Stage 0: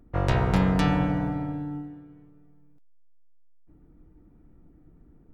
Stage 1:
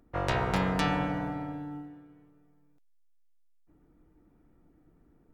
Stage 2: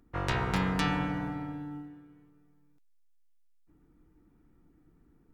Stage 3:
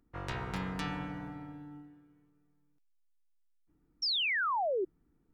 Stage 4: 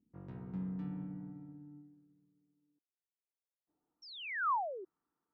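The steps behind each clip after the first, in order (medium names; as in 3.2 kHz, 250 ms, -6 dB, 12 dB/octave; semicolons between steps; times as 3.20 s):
bass shelf 310 Hz -10.5 dB
peaking EQ 610 Hz -8.5 dB 0.69 oct
painted sound fall, 4.02–4.85 s, 350–5700 Hz -23 dBFS; trim -8 dB
band-pass sweep 200 Hz -> 1.1 kHz, 2.26–4.27 s; trim +1 dB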